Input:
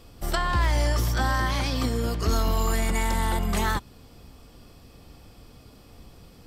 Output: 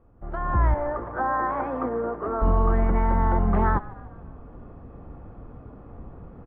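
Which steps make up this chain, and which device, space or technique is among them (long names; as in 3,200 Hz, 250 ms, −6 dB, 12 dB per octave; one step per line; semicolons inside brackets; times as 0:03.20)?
0:00.74–0:02.42: three-way crossover with the lows and the highs turned down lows −23 dB, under 300 Hz, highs −14 dB, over 2,200 Hz
echo with shifted repeats 149 ms, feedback 52%, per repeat −51 Hz, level −19 dB
action camera in a waterproof case (low-pass filter 1,400 Hz 24 dB per octave; automatic gain control gain up to 15 dB; level −8 dB; AAC 64 kbit/s 24,000 Hz)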